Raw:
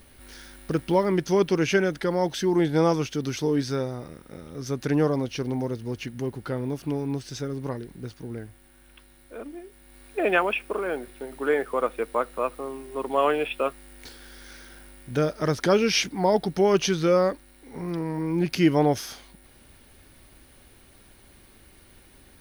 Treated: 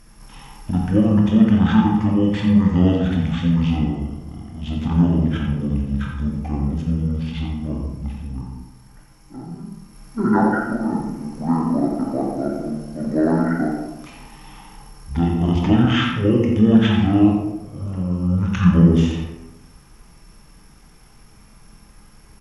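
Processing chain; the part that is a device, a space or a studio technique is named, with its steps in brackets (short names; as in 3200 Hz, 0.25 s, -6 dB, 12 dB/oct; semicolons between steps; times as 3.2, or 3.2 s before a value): monster voice (pitch shift -10 st; low shelf 190 Hz +5 dB; echo 87 ms -9 dB; reverb RT60 1.0 s, pre-delay 20 ms, DRR 0 dB)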